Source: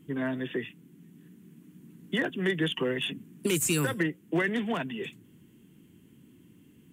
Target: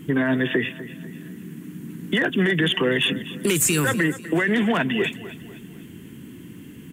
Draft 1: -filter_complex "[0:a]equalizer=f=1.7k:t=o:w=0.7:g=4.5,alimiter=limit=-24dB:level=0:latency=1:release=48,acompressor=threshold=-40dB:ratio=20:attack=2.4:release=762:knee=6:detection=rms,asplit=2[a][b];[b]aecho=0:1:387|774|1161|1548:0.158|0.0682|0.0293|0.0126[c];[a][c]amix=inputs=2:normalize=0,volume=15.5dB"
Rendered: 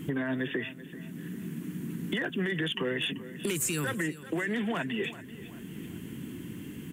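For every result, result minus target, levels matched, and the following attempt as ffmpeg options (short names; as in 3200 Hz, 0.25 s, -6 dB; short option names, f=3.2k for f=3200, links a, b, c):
echo 0.138 s late; compressor: peak gain reduction +10.5 dB
-filter_complex "[0:a]equalizer=f=1.7k:t=o:w=0.7:g=4.5,alimiter=limit=-24dB:level=0:latency=1:release=48,acompressor=threshold=-40dB:ratio=20:attack=2.4:release=762:knee=6:detection=rms,asplit=2[a][b];[b]aecho=0:1:249|498|747|996:0.158|0.0682|0.0293|0.0126[c];[a][c]amix=inputs=2:normalize=0,volume=15.5dB"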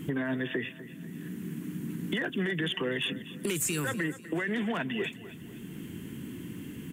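compressor: peak gain reduction +10.5 dB
-filter_complex "[0:a]equalizer=f=1.7k:t=o:w=0.7:g=4.5,alimiter=limit=-24dB:level=0:latency=1:release=48,acompressor=threshold=-28.5dB:ratio=20:attack=2.4:release=762:knee=6:detection=rms,asplit=2[a][b];[b]aecho=0:1:249|498|747|996:0.158|0.0682|0.0293|0.0126[c];[a][c]amix=inputs=2:normalize=0,volume=15.5dB"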